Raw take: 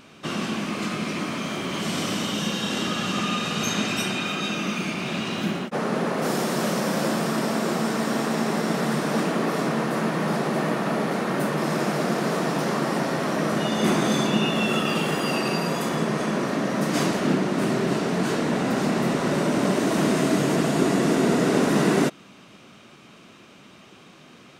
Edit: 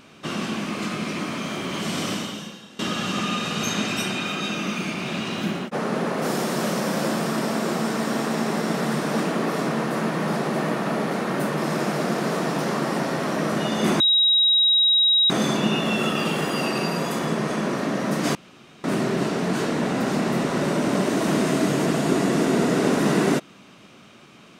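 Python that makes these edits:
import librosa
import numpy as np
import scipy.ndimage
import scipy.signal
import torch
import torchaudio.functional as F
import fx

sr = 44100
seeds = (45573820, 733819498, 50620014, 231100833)

y = fx.edit(x, sr, fx.fade_out_to(start_s=2.12, length_s=0.67, curve='qua', floor_db=-20.5),
    fx.insert_tone(at_s=14.0, length_s=1.3, hz=3820.0, db=-14.5),
    fx.room_tone_fill(start_s=17.05, length_s=0.49), tone=tone)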